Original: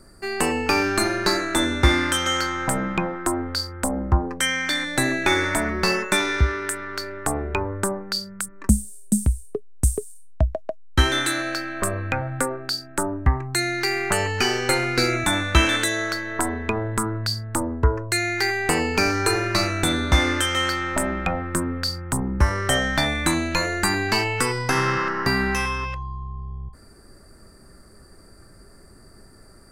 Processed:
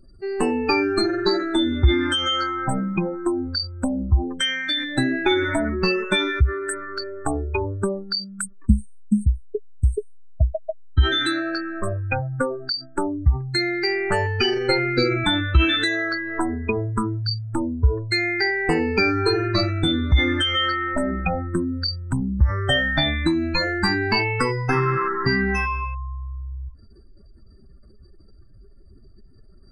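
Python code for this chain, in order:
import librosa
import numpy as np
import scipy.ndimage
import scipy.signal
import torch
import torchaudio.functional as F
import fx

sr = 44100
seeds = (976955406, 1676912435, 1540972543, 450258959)

y = fx.spec_expand(x, sr, power=2.2)
y = fx.peak_eq(y, sr, hz=fx.steps((0.0, 2000.0), (10.44, 8400.0)), db=-4.5, octaves=0.55)
y = y * 10.0 ** (1.5 / 20.0)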